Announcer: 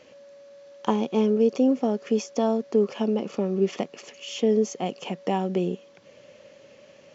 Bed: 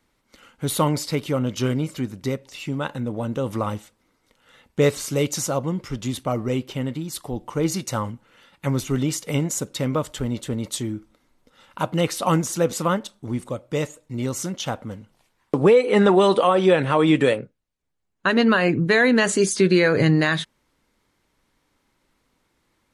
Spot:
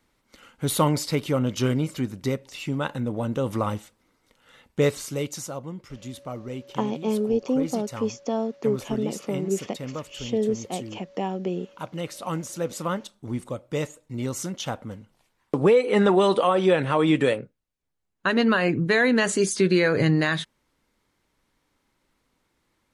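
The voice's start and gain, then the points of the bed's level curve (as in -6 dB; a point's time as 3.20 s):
5.90 s, -3.0 dB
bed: 4.60 s -0.5 dB
5.57 s -10.5 dB
12.23 s -10.5 dB
13.34 s -3 dB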